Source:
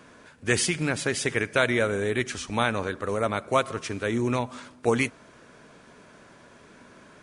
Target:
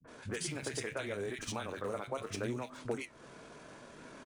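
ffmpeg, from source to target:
-filter_complex "[0:a]agate=range=-33dB:threshold=-49dB:ratio=3:detection=peak,asplit=2[a][b];[b]aeval=exprs='val(0)*gte(abs(val(0)),0.02)':c=same,volume=-9.5dB[c];[a][c]amix=inputs=2:normalize=0,acompressor=threshold=-38dB:ratio=6,equalizer=f=87:w=7.4:g=-10,atempo=1.7,flanger=delay=6.2:depth=9.5:regen=69:speed=0.75:shape=sinusoidal,acrossover=split=190|1800[d][e][f];[e]adelay=40[g];[f]adelay=70[h];[d][g][h]amix=inputs=3:normalize=0,volume=7dB"

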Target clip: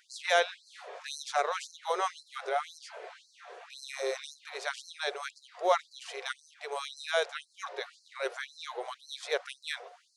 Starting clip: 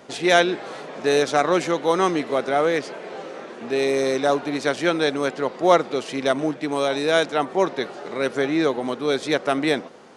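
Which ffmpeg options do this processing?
-af "aeval=exprs='val(0)+0.00708*sin(2*PI*720*n/s)':c=same,afftfilt=real='re*gte(b*sr/1024,350*pow(4100/350,0.5+0.5*sin(2*PI*1.9*pts/sr)))':imag='im*gte(b*sr/1024,350*pow(4100/350,0.5+0.5*sin(2*PI*1.9*pts/sr)))':win_size=1024:overlap=0.75,volume=-8.5dB"

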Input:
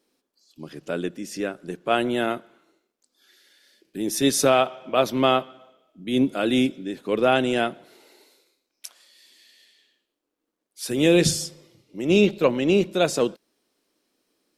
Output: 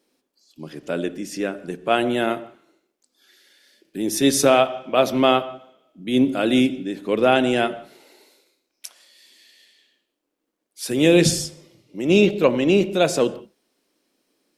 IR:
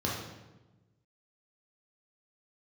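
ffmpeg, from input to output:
-filter_complex "[0:a]asplit=2[a][b];[1:a]atrim=start_sample=2205,atrim=end_sample=4410,asetrate=22932,aresample=44100[c];[b][c]afir=irnorm=-1:irlink=0,volume=-23dB[d];[a][d]amix=inputs=2:normalize=0,volume=1.5dB"

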